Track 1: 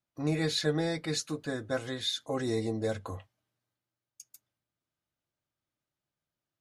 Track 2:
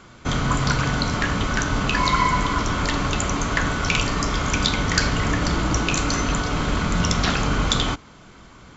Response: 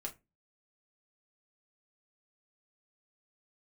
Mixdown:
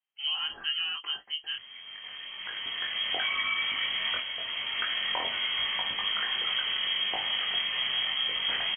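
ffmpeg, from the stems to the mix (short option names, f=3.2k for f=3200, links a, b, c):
-filter_complex "[0:a]volume=1.5dB,asplit=3[a][b][c];[a]atrim=end=1.56,asetpts=PTS-STARTPTS,afade=t=out:st=1.556:d=0.004:c=hsin[d];[b]atrim=start=1.56:end=3.84,asetpts=PTS-STARTPTS,volume=0[e];[c]atrim=start=3.84,asetpts=PTS-STARTPTS,afade=t=in:d=0.004:c=hsin[f];[d][e][f]concat=n=3:v=0:a=1,asplit=2[g][h];[1:a]acompressor=threshold=-24dB:ratio=3,adelay=1250,volume=-1dB[i];[h]apad=whole_len=441616[j];[i][j]sidechaincompress=threshold=-45dB:ratio=16:attack=7.9:release=1230[k];[g][k]amix=inputs=2:normalize=0,flanger=delay=19:depth=4.2:speed=0.85,lowpass=f=2.8k:t=q:w=0.5098,lowpass=f=2.8k:t=q:w=0.6013,lowpass=f=2.8k:t=q:w=0.9,lowpass=f=2.8k:t=q:w=2.563,afreqshift=-3300"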